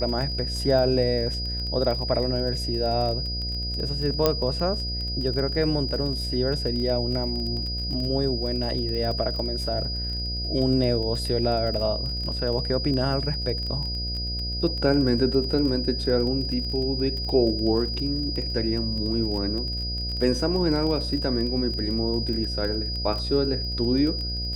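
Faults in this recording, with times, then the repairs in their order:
mains buzz 60 Hz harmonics 12 −31 dBFS
surface crackle 22 per second −30 dBFS
whistle 4,900 Hz −30 dBFS
0:04.26: click −6 dBFS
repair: click removal
hum removal 60 Hz, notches 12
notch filter 4,900 Hz, Q 30

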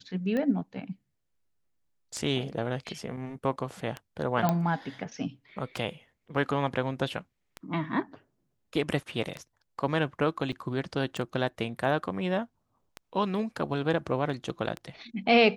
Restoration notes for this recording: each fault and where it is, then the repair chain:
scratch tick 33 1/3 rpm −20 dBFS
0:04.49: click −12 dBFS
0:10.52–0:10.53: drop-out 6.5 ms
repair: click removal
repair the gap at 0:10.52, 6.5 ms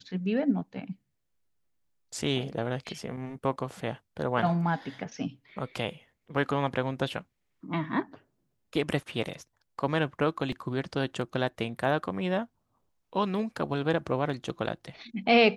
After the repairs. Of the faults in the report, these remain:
none of them is left

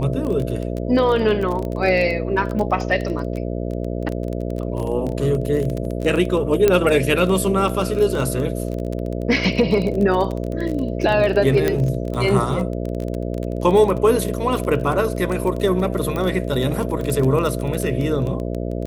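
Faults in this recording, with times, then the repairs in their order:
mains buzz 60 Hz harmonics 11 −25 dBFS
surface crackle 21 per second −23 dBFS
0:06.68: click −3 dBFS
0:11.68: click −6 dBFS
0:16.16: click −13 dBFS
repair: click removal
hum removal 60 Hz, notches 11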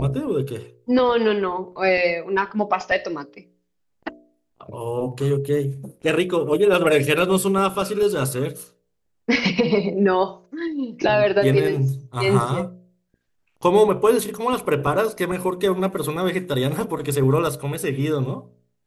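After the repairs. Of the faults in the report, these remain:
none of them is left

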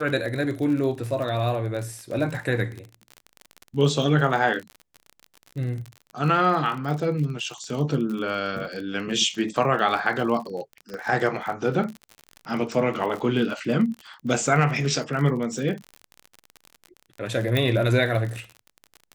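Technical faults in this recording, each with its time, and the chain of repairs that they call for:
surface crackle 42 per second −30 dBFS
0:10.94: click −23 dBFS
0:17.57: click −11 dBFS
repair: click removal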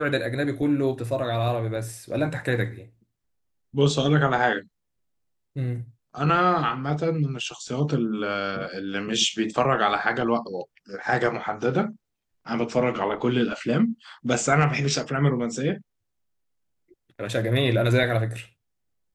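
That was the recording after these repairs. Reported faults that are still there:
0:10.94: click
0:17.57: click

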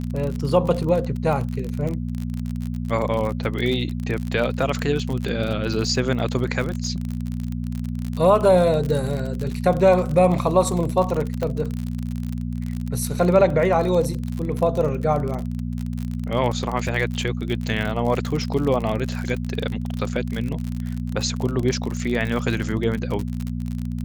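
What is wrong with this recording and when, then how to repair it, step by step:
surface crackle 47 per second −25 dBFS
mains hum 60 Hz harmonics 4 −27 dBFS
0:11.43: click −13 dBFS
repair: click removal
hum removal 60 Hz, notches 4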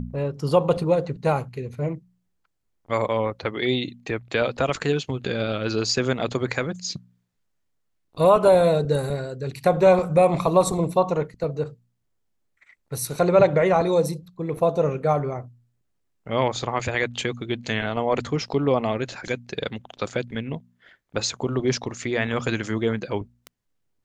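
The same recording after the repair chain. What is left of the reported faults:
none of them is left

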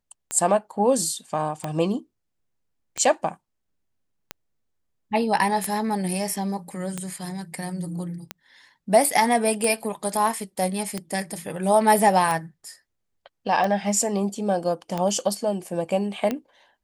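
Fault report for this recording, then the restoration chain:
scratch tick 45 rpm −13 dBFS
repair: click removal

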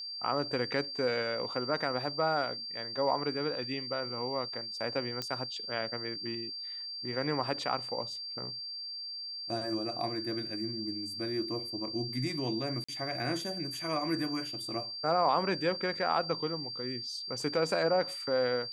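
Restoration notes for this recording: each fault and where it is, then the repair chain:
whistle 4,700 Hz −38 dBFS
0:05.22: click −20 dBFS
0:12.84–0:12.88: drop-out 45 ms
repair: click removal
notch filter 4,700 Hz, Q 30
repair the gap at 0:12.84, 45 ms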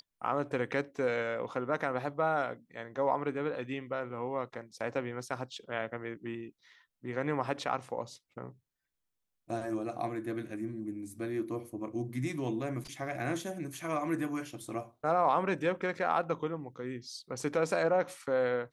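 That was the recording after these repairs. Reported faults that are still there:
none of them is left

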